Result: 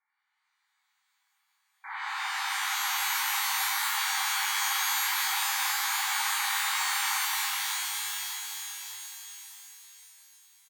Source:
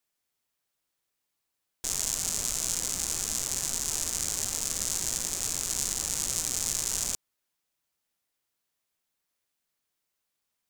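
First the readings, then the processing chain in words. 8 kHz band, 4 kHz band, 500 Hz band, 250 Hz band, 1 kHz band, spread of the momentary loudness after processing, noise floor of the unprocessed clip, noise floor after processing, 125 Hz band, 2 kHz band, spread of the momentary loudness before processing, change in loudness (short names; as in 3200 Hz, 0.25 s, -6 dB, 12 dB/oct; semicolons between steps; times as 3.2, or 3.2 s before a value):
-4.0 dB, +6.0 dB, under -20 dB, under -40 dB, +15.5 dB, 13 LU, -82 dBFS, -77 dBFS, under -40 dB, +15.5 dB, 2 LU, +0.5 dB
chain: half-wave gain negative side -3 dB; feedback echo 0.602 s, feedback 33%, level -9 dB; FFT band-pass 760–2400 Hz; shimmer reverb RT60 3.6 s, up +12 st, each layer -2 dB, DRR -9 dB; gain +6.5 dB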